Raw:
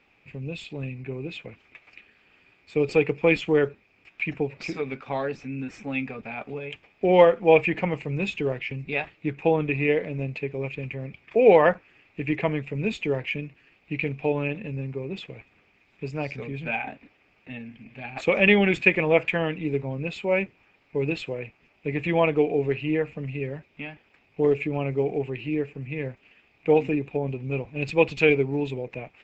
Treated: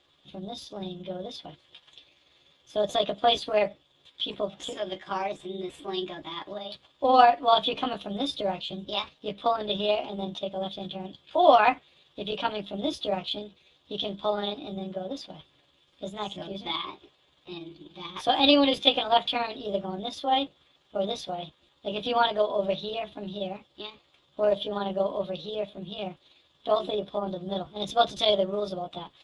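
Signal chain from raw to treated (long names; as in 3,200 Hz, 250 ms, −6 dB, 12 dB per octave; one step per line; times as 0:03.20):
pitch shift by two crossfaded delay taps +6 semitones
notch comb filter 220 Hz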